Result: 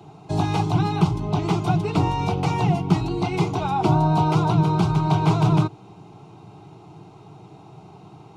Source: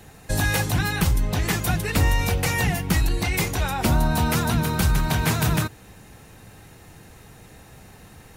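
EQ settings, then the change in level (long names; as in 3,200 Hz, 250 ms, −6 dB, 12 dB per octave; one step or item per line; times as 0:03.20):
high-pass filter 130 Hz 12 dB per octave
head-to-tape spacing loss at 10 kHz 31 dB
phaser with its sweep stopped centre 350 Hz, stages 8
+9.0 dB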